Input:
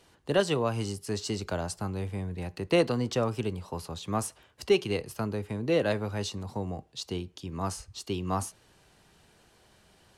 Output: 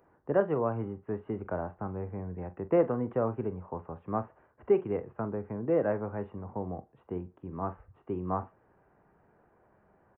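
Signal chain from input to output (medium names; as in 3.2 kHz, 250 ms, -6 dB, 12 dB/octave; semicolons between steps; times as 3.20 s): Gaussian low-pass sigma 6.9 samples; tilt EQ +2.5 dB/octave; doubling 44 ms -14 dB; trim +3 dB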